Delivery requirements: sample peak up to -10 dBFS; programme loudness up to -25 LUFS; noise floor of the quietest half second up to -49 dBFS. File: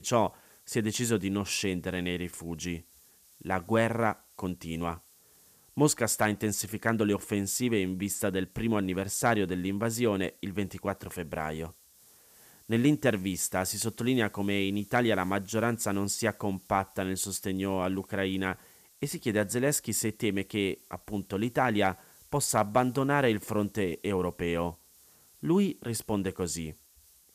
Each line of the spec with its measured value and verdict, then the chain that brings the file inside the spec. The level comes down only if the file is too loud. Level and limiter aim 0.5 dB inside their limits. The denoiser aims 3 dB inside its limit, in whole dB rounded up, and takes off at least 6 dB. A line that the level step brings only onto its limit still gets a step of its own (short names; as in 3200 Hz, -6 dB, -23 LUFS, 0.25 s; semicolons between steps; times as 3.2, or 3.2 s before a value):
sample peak -11.5 dBFS: OK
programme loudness -30.0 LUFS: OK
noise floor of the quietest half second -60 dBFS: OK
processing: none